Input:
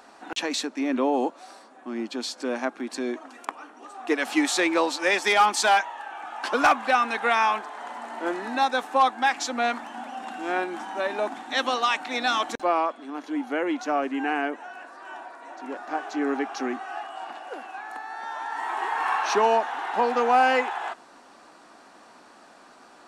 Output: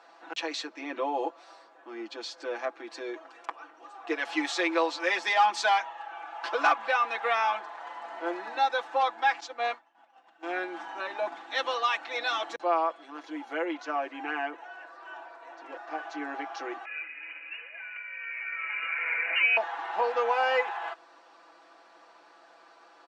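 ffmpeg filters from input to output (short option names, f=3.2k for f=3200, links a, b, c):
-filter_complex "[0:a]asettb=1/sr,asplit=3[a][b][c];[a]atrim=end=9.404[d];[b]atrim=start=9.4:end=10.43,asetpts=PTS-STARTPTS,afade=t=in:d=0.004:c=qsin,afade=t=out:st=1.026:d=0.004:c=qsin,agate=range=-33dB:threshold=-25dB:ratio=3:release=100:detection=peak[e];[c]atrim=start=10.426[f];[d][e]acrossfade=d=0.004:c1=hsin:c2=qsin[g];[g][f]acrossfade=d=0.004:c1=qsin:c2=hsin,asettb=1/sr,asplit=3[h][i][j];[h]atrim=end=12.904[k];[i]atrim=start=12.9:end=13.65,asetpts=PTS-STARTPTS,afade=t=in:d=0.004:c=qsin,afade=t=out:st=0.746:d=0.004:c=qsin,highshelf=f=7.5k:g=11.5[l];[j]atrim=start=13.646[m];[k][l]acrossfade=d=0.004:c1=hsin:c2=qsin[n];[n][m]acrossfade=d=0.004:c1=qsin:c2=hsin,asettb=1/sr,asplit=3[o][p][q];[o]atrim=end=16.854[r];[p]atrim=start=16.85:end=19.57,asetpts=PTS-STARTPTS,afade=t=in:d=0.004:c=qsin,afade=t=out:st=2.716:d=0.004:c=qsin,lowpass=f=2.7k:t=q:w=0.5098,lowpass=f=2.7k:t=q:w=0.6013,lowpass=f=2.7k:t=q:w=0.9,lowpass=f=2.7k:t=q:w=2.563,afreqshift=-3200[s];[q]atrim=start=19.566[t];[r][s]acrossfade=d=0.004:c1=hsin:c2=qsin[u];[u][t]acrossfade=d=0.004:c1=qsin:c2=hsin,acrossover=split=320 6000:gain=0.0708 1 0.0708[v][w][x];[v][w][x]amix=inputs=3:normalize=0,aecho=1:1:6:0.9,bandreject=f=50.8:t=h:w=4,bandreject=f=101.6:t=h:w=4,bandreject=f=152.4:t=h:w=4,bandreject=f=203.2:t=h:w=4,volume=-6.5dB"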